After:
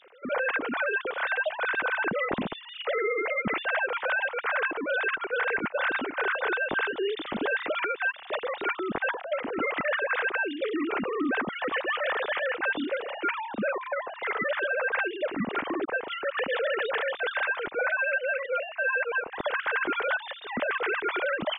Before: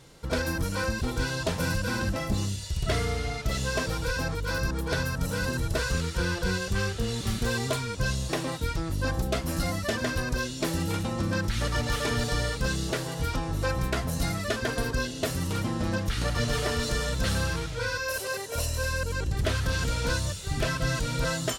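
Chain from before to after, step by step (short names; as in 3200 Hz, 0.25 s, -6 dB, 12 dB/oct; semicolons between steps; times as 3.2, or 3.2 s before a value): sine-wave speech; limiter -21.5 dBFS, peak gain reduction 11.5 dB; gain +1.5 dB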